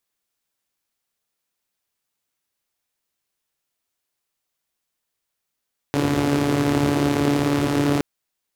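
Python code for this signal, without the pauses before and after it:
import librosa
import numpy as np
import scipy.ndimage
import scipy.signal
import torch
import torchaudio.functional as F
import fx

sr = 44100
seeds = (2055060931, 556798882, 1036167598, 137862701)

y = fx.engine_four(sr, seeds[0], length_s=2.07, rpm=4300, resonances_hz=(120.0, 280.0))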